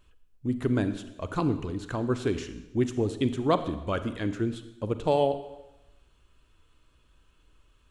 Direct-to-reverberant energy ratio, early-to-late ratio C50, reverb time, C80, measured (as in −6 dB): 11.0 dB, 12.0 dB, 1.0 s, 13.5 dB